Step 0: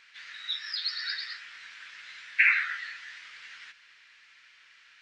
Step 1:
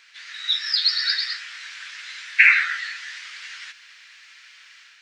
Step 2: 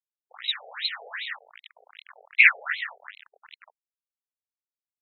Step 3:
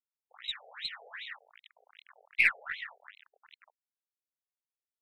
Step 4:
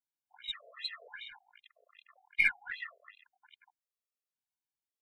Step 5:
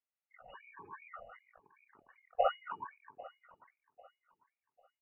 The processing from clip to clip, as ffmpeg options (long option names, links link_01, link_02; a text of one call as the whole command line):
ffmpeg -i in.wav -filter_complex "[0:a]bass=frequency=250:gain=-7,treble=frequency=4000:gain=7,acrossover=split=860[link_01][link_02];[link_02]dynaudnorm=framelen=240:gausssize=3:maxgain=5dB[link_03];[link_01][link_03]amix=inputs=2:normalize=0,volume=3dB" out.wav
ffmpeg -i in.wav -af "aresample=11025,acrusher=bits=4:mix=0:aa=0.000001,aresample=44100,afftfilt=real='re*between(b*sr/1024,550*pow(3000/550,0.5+0.5*sin(2*PI*2.6*pts/sr))/1.41,550*pow(3000/550,0.5+0.5*sin(2*PI*2.6*pts/sr))*1.41)':imag='im*between(b*sr/1024,550*pow(3000/550,0.5+0.5*sin(2*PI*2.6*pts/sr))/1.41,550*pow(3000/550,0.5+0.5*sin(2*PI*2.6*pts/sr))*1.41)':win_size=1024:overlap=0.75" out.wav
ffmpeg -i in.wav -af "aeval=exprs='0.75*(cos(1*acos(clip(val(0)/0.75,-1,1)))-cos(1*PI/2))+0.0168*(cos(4*acos(clip(val(0)/0.75,-1,1)))-cos(4*PI/2))+0.0266*(cos(6*acos(clip(val(0)/0.75,-1,1)))-cos(6*PI/2))':channel_layout=same,volume=-9dB" out.wav
ffmpeg -i in.wav -af "afftfilt=real='re*gt(sin(2*PI*0.92*pts/sr)*(1-2*mod(floor(b*sr/1024/350),2)),0)':imag='im*gt(sin(2*PI*0.92*pts/sr)*(1-2*mod(floor(b*sr/1024/350),2)),0)':win_size=1024:overlap=0.75" out.wav
ffmpeg -i in.wav -af "aecho=1:1:796|1592|2388:0.1|0.032|0.0102,lowpass=frequency=2500:width_type=q:width=0.5098,lowpass=frequency=2500:width_type=q:width=0.6013,lowpass=frequency=2500:width_type=q:width=0.9,lowpass=frequency=2500:width_type=q:width=2.563,afreqshift=-2900,volume=-1.5dB" out.wav